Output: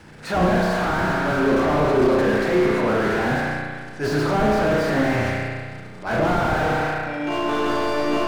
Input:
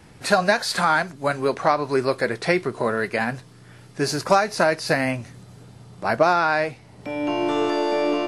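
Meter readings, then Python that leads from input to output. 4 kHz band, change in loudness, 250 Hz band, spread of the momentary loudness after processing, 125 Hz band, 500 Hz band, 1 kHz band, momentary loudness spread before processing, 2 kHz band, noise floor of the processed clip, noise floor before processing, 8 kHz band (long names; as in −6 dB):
−2.5 dB, +1.0 dB, +5.0 dB, 8 LU, +6.5 dB, +1.5 dB, −0.5 dB, 10 LU, +0.5 dB, −37 dBFS, −48 dBFS, −5.5 dB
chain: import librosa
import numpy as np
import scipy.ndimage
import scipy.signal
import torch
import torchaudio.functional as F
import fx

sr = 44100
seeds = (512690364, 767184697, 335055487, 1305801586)

y = scipy.signal.sosfilt(scipy.signal.butter(2, 8600.0, 'lowpass', fs=sr, output='sos'), x)
y = fx.transient(y, sr, attack_db=-9, sustain_db=10)
y = fx.peak_eq(y, sr, hz=1500.0, db=5.5, octaves=0.3)
y = fx.hum_notches(y, sr, base_hz=60, count=3)
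y = fx.rev_spring(y, sr, rt60_s=1.6, pass_ms=(33,), chirp_ms=30, drr_db=-2.5)
y = fx.quant_dither(y, sr, seeds[0], bits=12, dither='none')
y = fx.slew_limit(y, sr, full_power_hz=77.0)
y = F.gain(torch.from_numpy(y), 1.5).numpy()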